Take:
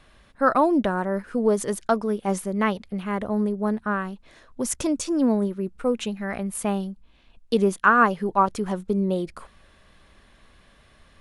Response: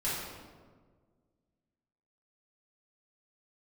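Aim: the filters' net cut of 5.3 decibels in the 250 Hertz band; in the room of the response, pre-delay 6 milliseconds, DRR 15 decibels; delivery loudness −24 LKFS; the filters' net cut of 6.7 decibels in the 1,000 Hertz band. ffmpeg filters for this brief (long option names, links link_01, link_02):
-filter_complex "[0:a]equalizer=frequency=250:width_type=o:gain=-6.5,equalizer=frequency=1000:width_type=o:gain=-8.5,asplit=2[link_01][link_02];[1:a]atrim=start_sample=2205,adelay=6[link_03];[link_02][link_03]afir=irnorm=-1:irlink=0,volume=-22dB[link_04];[link_01][link_04]amix=inputs=2:normalize=0,volume=4.5dB"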